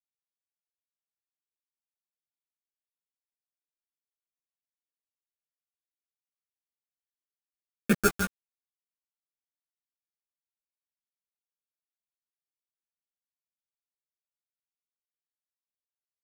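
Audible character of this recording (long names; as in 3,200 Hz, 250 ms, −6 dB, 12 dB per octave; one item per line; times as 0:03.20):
aliases and images of a low sample rate 1,000 Hz, jitter 0%
phaser sweep stages 4, 1.2 Hz, lowest notch 510–1,200 Hz
a quantiser's noise floor 6 bits, dither none
a shimmering, thickened sound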